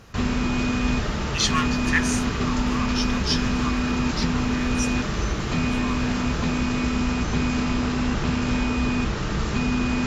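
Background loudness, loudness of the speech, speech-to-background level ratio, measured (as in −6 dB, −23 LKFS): −24.5 LKFS, −29.5 LKFS, −5.0 dB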